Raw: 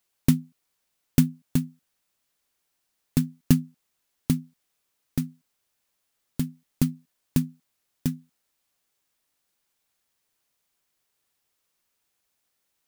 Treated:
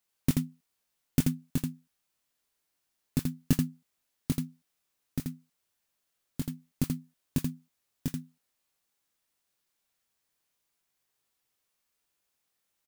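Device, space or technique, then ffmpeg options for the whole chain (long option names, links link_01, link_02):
slapback doubling: -filter_complex "[0:a]asplit=3[link_01][link_02][link_03];[link_02]adelay=22,volume=-4.5dB[link_04];[link_03]adelay=83,volume=-4dB[link_05];[link_01][link_04][link_05]amix=inputs=3:normalize=0,volume=-6dB"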